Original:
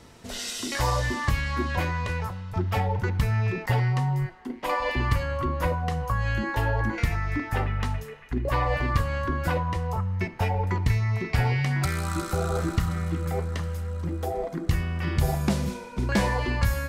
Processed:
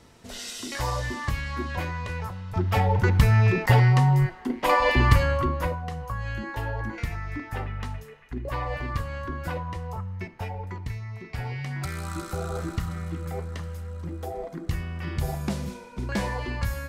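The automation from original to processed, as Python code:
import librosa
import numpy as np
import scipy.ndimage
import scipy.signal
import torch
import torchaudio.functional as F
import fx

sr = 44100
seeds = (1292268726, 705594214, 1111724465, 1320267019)

y = fx.gain(x, sr, db=fx.line((2.09, -3.5), (3.1, 6.0), (5.27, 6.0), (5.84, -5.5), (9.96, -5.5), (11.14, -11.5), (12.04, -4.5)))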